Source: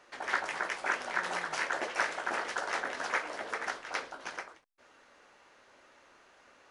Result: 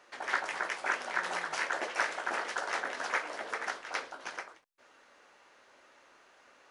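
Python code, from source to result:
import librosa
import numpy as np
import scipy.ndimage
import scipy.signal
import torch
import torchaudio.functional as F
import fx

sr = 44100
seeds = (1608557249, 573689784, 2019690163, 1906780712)

y = fx.low_shelf(x, sr, hz=170.0, db=-8.5)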